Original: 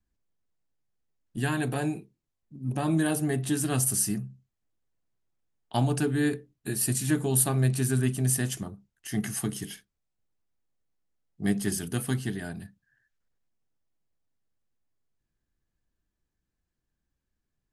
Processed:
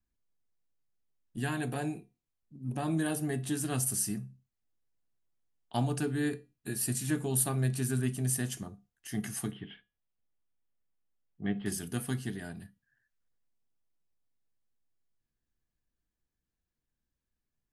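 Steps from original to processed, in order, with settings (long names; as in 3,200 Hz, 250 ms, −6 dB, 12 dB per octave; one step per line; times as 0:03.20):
0:09.51–0:11.66: elliptic low-pass filter 3,300 Hz, stop band 50 dB
tuned comb filter 240 Hz, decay 0.3 s, harmonics all, mix 50%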